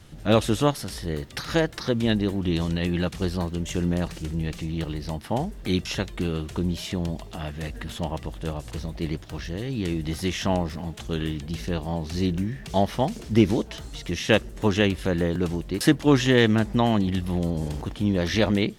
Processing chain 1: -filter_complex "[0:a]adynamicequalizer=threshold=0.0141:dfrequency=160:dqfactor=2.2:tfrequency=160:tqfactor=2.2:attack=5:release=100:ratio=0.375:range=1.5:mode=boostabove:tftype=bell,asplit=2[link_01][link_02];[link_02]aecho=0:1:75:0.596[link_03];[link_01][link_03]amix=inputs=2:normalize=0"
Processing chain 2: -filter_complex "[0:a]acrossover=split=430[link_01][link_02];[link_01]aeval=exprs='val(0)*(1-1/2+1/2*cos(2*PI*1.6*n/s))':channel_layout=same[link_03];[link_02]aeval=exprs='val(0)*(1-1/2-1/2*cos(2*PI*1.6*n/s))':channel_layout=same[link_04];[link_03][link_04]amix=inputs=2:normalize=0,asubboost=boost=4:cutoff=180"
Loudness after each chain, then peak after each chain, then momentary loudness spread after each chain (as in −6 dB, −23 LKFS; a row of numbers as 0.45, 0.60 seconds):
−23.5, −26.0 LKFS; −3.5, −7.0 dBFS; 11, 11 LU